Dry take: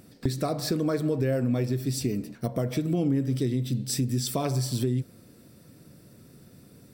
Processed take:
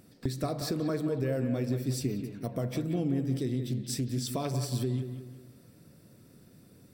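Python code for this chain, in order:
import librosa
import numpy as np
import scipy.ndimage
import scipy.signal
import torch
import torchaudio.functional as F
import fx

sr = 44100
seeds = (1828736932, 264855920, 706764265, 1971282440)

p1 = x + fx.echo_bbd(x, sr, ms=181, stages=4096, feedback_pct=41, wet_db=-8.5, dry=0)
p2 = fx.doppler_dist(p1, sr, depth_ms=0.15, at=(3.66, 4.35))
y = p2 * librosa.db_to_amplitude(-5.0)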